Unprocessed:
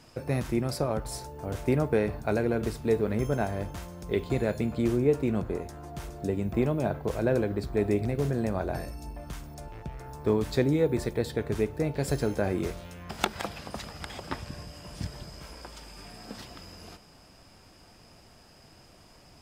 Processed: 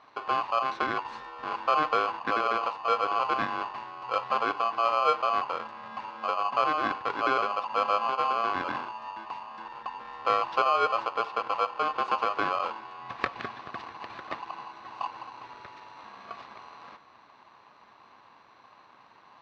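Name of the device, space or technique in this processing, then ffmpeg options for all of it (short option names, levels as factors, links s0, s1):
ring modulator pedal into a guitar cabinet: -af "aeval=exprs='val(0)*sgn(sin(2*PI*920*n/s))':c=same,highpass=100,equalizer=f=120:t=q:w=4:g=3,equalizer=f=170:t=q:w=4:g=-5,equalizer=f=1100:t=q:w=4:g=8,equalizer=f=3100:t=q:w=4:g=-5,lowpass=f=3700:w=0.5412,lowpass=f=3700:w=1.3066,volume=0.75"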